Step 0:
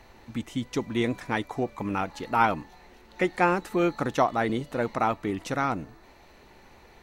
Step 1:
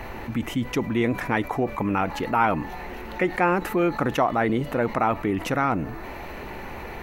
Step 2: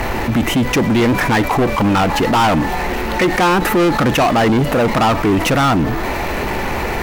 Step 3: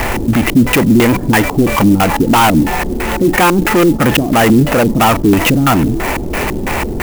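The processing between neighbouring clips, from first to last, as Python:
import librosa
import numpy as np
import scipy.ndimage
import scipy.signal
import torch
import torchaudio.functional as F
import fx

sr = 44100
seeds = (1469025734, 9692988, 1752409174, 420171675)

y1 = fx.band_shelf(x, sr, hz=5700.0, db=-9.5, octaves=1.7)
y1 = fx.env_flatten(y1, sr, amount_pct=50)
y2 = fx.leveller(y1, sr, passes=5)
y2 = y2 * librosa.db_to_amplitude(-2.0)
y3 = fx.filter_lfo_lowpass(y2, sr, shape='square', hz=3.0, low_hz=300.0, high_hz=2900.0, q=1.6)
y3 = fx.clock_jitter(y3, sr, seeds[0], jitter_ms=0.036)
y3 = y3 * librosa.db_to_amplitude(3.0)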